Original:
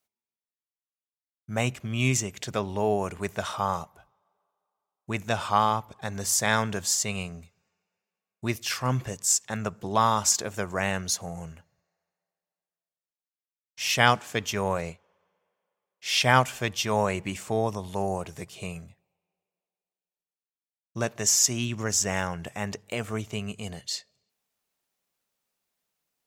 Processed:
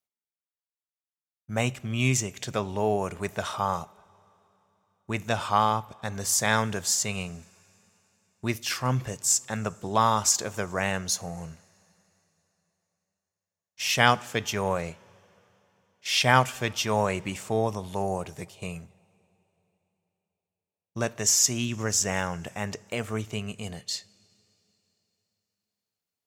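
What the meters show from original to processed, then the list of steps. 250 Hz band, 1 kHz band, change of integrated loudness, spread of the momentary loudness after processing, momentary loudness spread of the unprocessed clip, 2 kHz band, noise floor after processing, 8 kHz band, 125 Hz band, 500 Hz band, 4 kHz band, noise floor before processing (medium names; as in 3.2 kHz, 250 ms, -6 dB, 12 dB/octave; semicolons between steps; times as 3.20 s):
0.0 dB, 0.0 dB, 0.0 dB, 15 LU, 14 LU, 0.0 dB, under -85 dBFS, 0.0 dB, +0.5 dB, 0.0 dB, 0.0 dB, under -85 dBFS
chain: gate -43 dBFS, range -9 dB; two-slope reverb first 0.3 s, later 3.6 s, from -18 dB, DRR 18 dB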